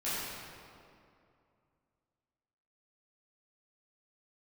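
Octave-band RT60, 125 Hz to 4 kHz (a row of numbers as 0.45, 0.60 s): 2.9, 2.7, 2.6, 2.4, 1.9, 1.5 s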